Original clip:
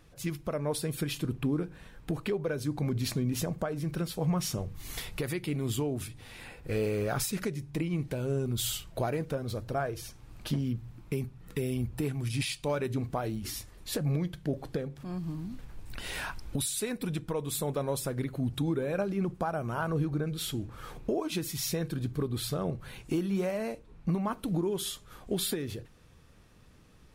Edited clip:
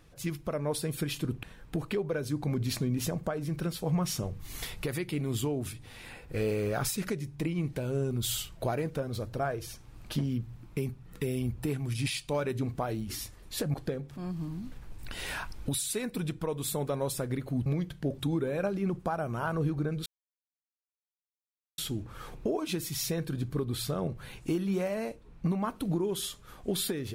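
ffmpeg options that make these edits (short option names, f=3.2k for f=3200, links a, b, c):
-filter_complex "[0:a]asplit=6[a][b][c][d][e][f];[a]atrim=end=1.432[g];[b]atrim=start=1.778:end=14.092[h];[c]atrim=start=14.608:end=18.532[i];[d]atrim=start=14.088:end=14.612[j];[e]atrim=start=18.528:end=20.41,asetpts=PTS-STARTPTS,afade=t=out:st=1.878:d=0.004:c=hsin,apad=pad_dur=1.72[k];[f]atrim=start=20.41,asetpts=PTS-STARTPTS,afade=t=in:d=0.004:c=hsin[l];[g][h]acrossfade=d=0.004:c1=hsin:c2=hsin[m];[m][i]acrossfade=d=0.004:c1=hsin:c2=hsin[n];[n][j]acrossfade=d=0.004:c1=hsin:c2=hsin[o];[k][l]concat=n=2:v=0:a=1[p];[o][p]acrossfade=d=0.004:c1=hsin:c2=hsin"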